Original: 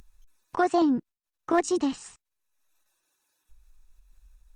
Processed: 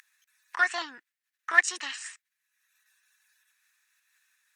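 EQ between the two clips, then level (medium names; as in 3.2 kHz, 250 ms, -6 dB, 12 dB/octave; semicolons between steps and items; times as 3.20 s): resonant high-pass 1.8 kHz, resonance Q 4.5; +3.0 dB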